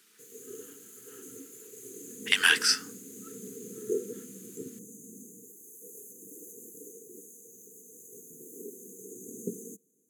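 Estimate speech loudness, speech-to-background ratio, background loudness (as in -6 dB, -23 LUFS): -24.0 LUFS, 19.0 dB, -43.0 LUFS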